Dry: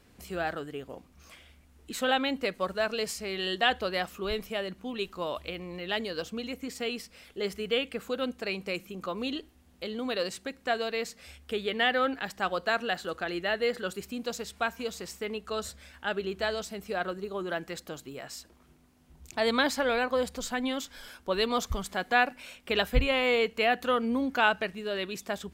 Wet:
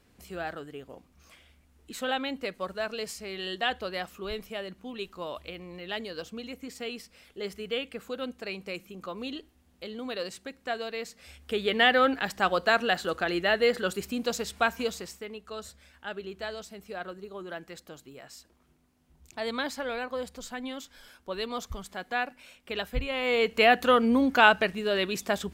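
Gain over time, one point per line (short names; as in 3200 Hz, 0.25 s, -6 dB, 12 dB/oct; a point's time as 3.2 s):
11.1 s -3.5 dB
11.72 s +4.5 dB
14.85 s +4.5 dB
15.28 s -6 dB
23.09 s -6 dB
23.59 s +5.5 dB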